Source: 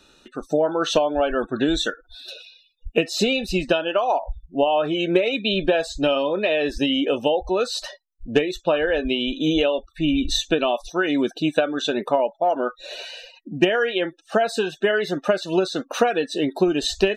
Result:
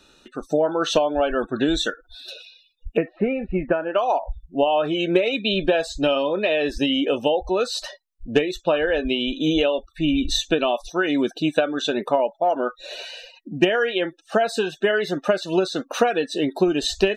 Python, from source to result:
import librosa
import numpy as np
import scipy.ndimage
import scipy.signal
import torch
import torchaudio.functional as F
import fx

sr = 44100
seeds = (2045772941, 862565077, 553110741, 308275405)

y = fx.cheby1_lowpass(x, sr, hz=2200.0, order=5, at=(2.97, 3.95))